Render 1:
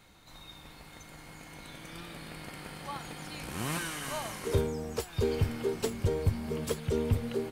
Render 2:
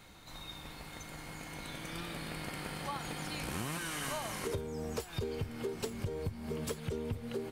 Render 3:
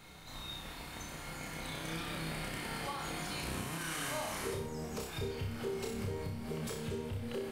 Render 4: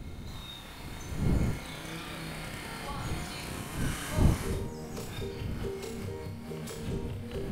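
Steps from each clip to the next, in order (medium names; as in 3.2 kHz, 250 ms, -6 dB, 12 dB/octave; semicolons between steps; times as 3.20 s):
compression 8:1, threshold -37 dBFS, peak gain reduction 16.5 dB; trim +3 dB
peak limiter -31 dBFS, peak gain reduction 7 dB; on a send: flutter echo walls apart 5.3 m, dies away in 0.54 s
wind noise 160 Hz -35 dBFS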